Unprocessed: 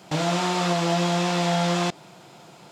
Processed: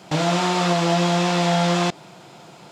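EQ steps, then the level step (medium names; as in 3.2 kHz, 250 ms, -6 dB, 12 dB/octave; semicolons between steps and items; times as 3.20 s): treble shelf 11 kHz -6 dB; +3.5 dB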